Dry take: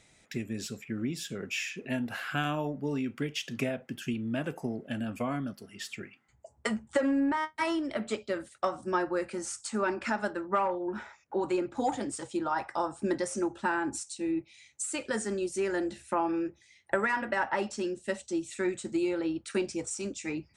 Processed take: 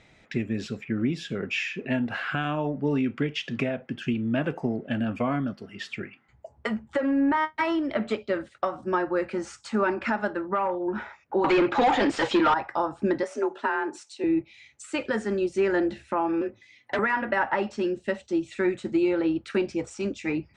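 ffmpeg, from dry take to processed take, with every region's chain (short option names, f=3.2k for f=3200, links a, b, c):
-filter_complex "[0:a]asettb=1/sr,asplit=3[a][b][c];[a]atrim=end=11.444[d];[b]atrim=start=11.44:end=12.54,asetpts=PTS-STARTPTS,afade=t=in:d=0.004:c=qsin,afade=t=out:st=1.096:d=0.004:c=qsin,lowpass=6.5k,highshelf=f=2.1k:g=11,asplit=2[e][f];[f]highpass=f=720:p=1,volume=24dB,asoftclip=type=tanh:threshold=-17.5dB[g];[e][g]amix=inputs=2:normalize=0,lowpass=f=2.6k:p=1,volume=-6dB[h];[c]atrim=start=12.536[i];[d][h]acrossfade=d=0.004:c1=hsin:c2=qsin[j];[j][i]acrossfade=d=0.004:c1=qsin:c2=hsin,asettb=1/sr,asplit=3[k][l][m];[k]atrim=end=13.234[n];[l]atrim=start=13.23:end=14.24,asetpts=PTS-STARTPTS,afade=t=in:d=0.004:c=qsin,afade=t=out:st=1.006:d=0.004:c=qsin,highpass=320,afreqshift=31[o];[m]atrim=start=14.236[p];[n][o]acrossfade=d=0.004:c1=hsin:c2=qsin[q];[q][p]acrossfade=d=0.004:c1=qsin:c2=hsin,asettb=1/sr,asplit=3[r][s][t];[r]atrim=end=16.414[u];[s]atrim=start=16.41:end=16.99,asetpts=PTS-STARTPTS,afade=t=in:d=0.004:c=qsin,afade=t=out:st=0.576:d=0.004:c=qsin,aecho=1:1:4.1:0.73,atrim=end_sample=25578,asoftclip=type=hard:threshold=-29dB,afreqshift=38[v];[t]atrim=start=16.986[w];[u][v]acrossfade=d=0.004:c1=hsin:c2=qsin[x];[x][w]acrossfade=d=0.004:c1=qsin:c2=hsin,alimiter=limit=-21.5dB:level=0:latency=1:release=476,lowpass=3.2k,volume=7dB"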